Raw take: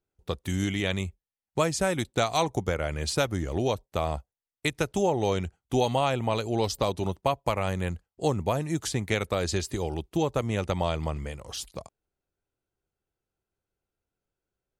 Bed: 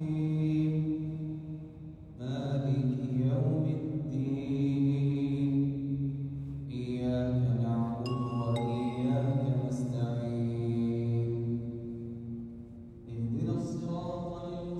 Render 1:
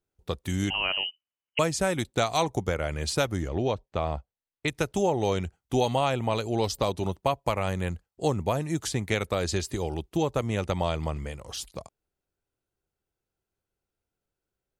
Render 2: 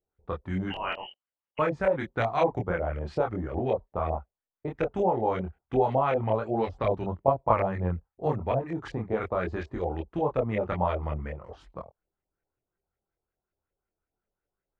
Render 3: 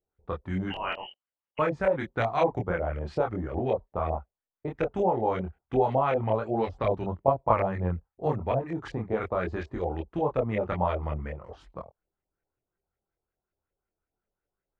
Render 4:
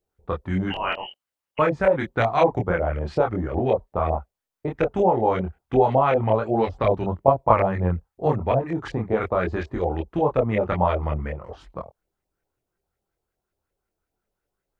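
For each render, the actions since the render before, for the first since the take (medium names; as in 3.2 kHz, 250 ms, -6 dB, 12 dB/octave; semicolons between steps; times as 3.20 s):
0.70–1.59 s: frequency inversion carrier 3 kHz; 3.48–4.68 s: distance through air 140 m
LFO low-pass saw up 5.4 Hz 520–2200 Hz; chorus voices 4, 1.5 Hz, delay 25 ms, depth 3 ms
no audible change
trim +6 dB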